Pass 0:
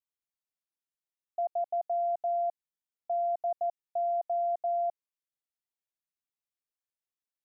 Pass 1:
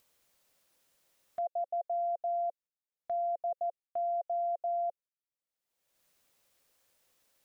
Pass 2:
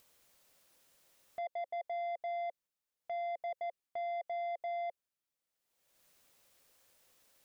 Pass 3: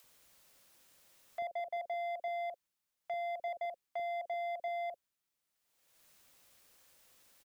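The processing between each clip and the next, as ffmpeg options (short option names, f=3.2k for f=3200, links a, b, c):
-af "equalizer=f=540:t=o:w=0.43:g=8,agate=range=-12dB:threshold=-52dB:ratio=16:detection=peak,acompressor=mode=upward:threshold=-38dB:ratio=2.5,volume=-5dB"
-af "alimiter=level_in=8.5dB:limit=-24dB:level=0:latency=1,volume=-8.5dB,asoftclip=type=tanh:threshold=-38.5dB,volume=3.5dB"
-filter_complex "[0:a]acrossover=split=520[a][b];[a]adelay=40[c];[c][b]amix=inputs=2:normalize=0,acrossover=split=1000|1500[d][e][f];[e]acrusher=bits=6:mode=log:mix=0:aa=0.000001[g];[d][g][f]amix=inputs=3:normalize=0,volume=3.5dB"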